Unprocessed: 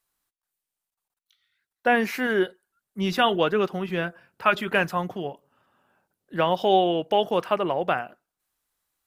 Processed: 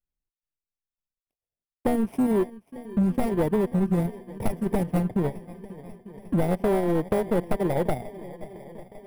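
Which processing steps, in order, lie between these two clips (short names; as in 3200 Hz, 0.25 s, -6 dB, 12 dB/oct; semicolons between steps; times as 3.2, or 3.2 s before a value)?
FFT order left unsorted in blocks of 32 samples; transient shaper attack +5 dB, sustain -11 dB; hard clip -12.5 dBFS, distortion -13 dB; band shelf 5200 Hz -8.5 dB 1 oct; gate with hold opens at -36 dBFS; tilt -4.5 dB/oct; compressor, threshold -21 dBFS, peak gain reduction 11.5 dB; swung echo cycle 0.898 s, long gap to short 1.5:1, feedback 54%, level -20.5 dB; soft clip -20 dBFS, distortion -14 dB; Doppler distortion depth 0.21 ms; gain +4 dB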